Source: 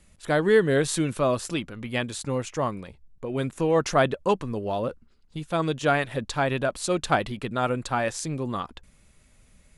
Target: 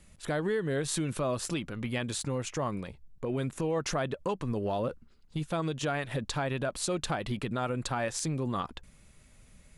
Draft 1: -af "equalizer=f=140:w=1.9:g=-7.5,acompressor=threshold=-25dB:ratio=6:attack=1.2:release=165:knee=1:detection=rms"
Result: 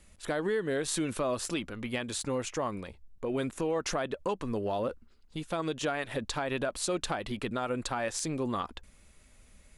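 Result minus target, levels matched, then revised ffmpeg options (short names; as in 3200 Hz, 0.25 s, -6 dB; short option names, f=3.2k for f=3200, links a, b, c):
125 Hz band -6.0 dB
-af "equalizer=f=140:w=1.9:g=2.5,acompressor=threshold=-25dB:ratio=6:attack=1.2:release=165:knee=1:detection=rms"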